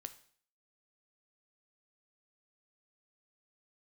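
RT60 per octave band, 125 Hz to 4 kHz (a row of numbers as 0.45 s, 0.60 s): 0.50 s, 0.55 s, 0.55 s, 0.50 s, 0.50 s, 0.55 s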